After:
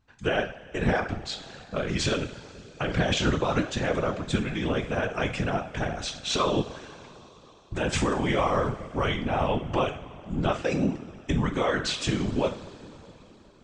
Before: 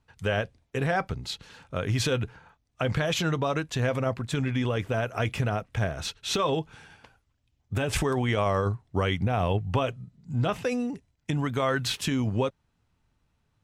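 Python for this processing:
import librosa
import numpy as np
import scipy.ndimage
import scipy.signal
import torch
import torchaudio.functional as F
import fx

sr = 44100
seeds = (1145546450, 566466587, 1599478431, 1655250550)

y = scipy.signal.sosfilt(scipy.signal.butter(8, 8300.0, 'lowpass', fs=sr, output='sos'), x)
y = fx.rev_double_slope(y, sr, seeds[0], early_s=0.44, late_s=4.1, knee_db=-18, drr_db=4.5)
y = fx.whisperise(y, sr, seeds[1])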